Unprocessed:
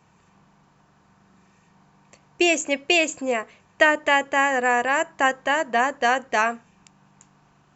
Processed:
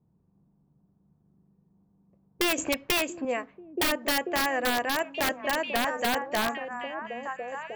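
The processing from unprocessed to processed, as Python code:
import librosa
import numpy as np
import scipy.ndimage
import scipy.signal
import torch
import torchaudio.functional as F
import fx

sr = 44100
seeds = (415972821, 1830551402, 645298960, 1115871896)

y = fx.env_lowpass(x, sr, base_hz=300.0, full_db=-19.0)
y = fx.echo_stepped(y, sr, ms=683, hz=160.0, octaves=1.4, feedback_pct=70, wet_db=-1.0)
y = (np.mod(10.0 ** (11.5 / 20.0) * y + 1.0, 2.0) - 1.0) / 10.0 ** (11.5 / 20.0)
y = fx.dynamic_eq(y, sr, hz=6900.0, q=1.0, threshold_db=-41.0, ratio=4.0, max_db=-7)
y = fx.band_squash(y, sr, depth_pct=70, at=(2.58, 3.25))
y = F.gain(torch.from_numpy(y), -5.5).numpy()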